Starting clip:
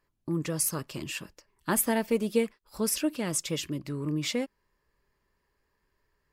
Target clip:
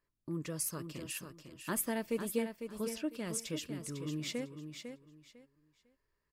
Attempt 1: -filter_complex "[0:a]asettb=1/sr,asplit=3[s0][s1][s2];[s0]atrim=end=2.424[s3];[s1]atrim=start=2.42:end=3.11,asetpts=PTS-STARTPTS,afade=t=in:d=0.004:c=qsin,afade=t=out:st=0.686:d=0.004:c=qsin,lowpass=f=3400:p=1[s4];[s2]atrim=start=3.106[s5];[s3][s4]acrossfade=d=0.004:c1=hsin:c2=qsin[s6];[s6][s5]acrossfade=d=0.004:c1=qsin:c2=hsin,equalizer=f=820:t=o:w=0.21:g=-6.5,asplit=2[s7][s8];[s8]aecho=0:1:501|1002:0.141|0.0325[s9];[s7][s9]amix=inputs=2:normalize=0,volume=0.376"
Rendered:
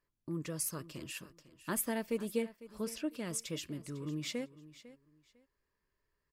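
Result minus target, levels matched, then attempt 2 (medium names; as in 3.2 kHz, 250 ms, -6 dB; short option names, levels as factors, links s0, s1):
echo-to-direct -9 dB
-filter_complex "[0:a]asettb=1/sr,asplit=3[s0][s1][s2];[s0]atrim=end=2.424[s3];[s1]atrim=start=2.42:end=3.11,asetpts=PTS-STARTPTS,afade=t=in:d=0.004:c=qsin,afade=t=out:st=0.686:d=0.004:c=qsin,lowpass=f=3400:p=1[s4];[s2]atrim=start=3.106[s5];[s3][s4]acrossfade=d=0.004:c1=hsin:c2=qsin[s6];[s6][s5]acrossfade=d=0.004:c1=qsin:c2=hsin,equalizer=f=820:t=o:w=0.21:g=-6.5,asplit=2[s7][s8];[s8]aecho=0:1:501|1002|1503:0.398|0.0916|0.0211[s9];[s7][s9]amix=inputs=2:normalize=0,volume=0.376"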